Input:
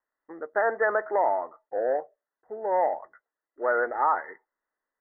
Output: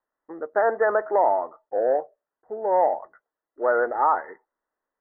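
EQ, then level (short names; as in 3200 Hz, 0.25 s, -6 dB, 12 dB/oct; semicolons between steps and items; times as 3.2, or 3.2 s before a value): LPF 1300 Hz 12 dB/oct; +4.5 dB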